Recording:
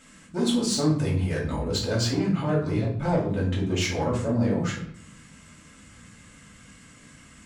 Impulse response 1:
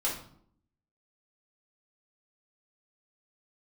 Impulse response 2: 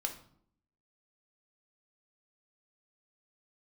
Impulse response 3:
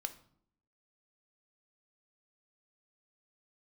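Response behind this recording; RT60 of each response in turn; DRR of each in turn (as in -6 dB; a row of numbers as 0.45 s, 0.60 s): 1; 0.65 s, 0.65 s, 0.65 s; -6.5 dB, 3.0 dB, 7.5 dB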